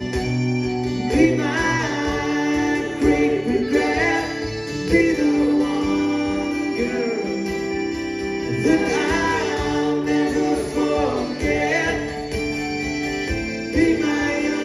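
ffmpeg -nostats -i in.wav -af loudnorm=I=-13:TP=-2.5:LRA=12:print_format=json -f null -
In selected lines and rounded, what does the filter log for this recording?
"input_i" : "-21.1",
"input_tp" : "-4.4",
"input_lra" : "2.4",
"input_thresh" : "-31.1",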